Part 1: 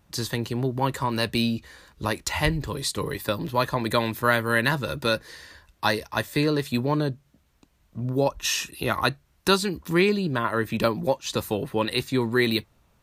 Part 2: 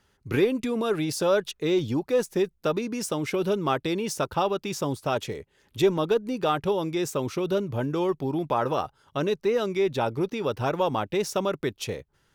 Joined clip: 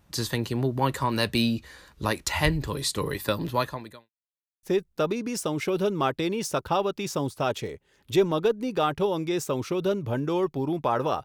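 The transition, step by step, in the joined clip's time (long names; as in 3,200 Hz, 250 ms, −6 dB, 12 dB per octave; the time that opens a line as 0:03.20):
part 1
0:03.52–0:04.10: fade out quadratic
0:04.10–0:04.63: silence
0:04.63: continue with part 2 from 0:02.29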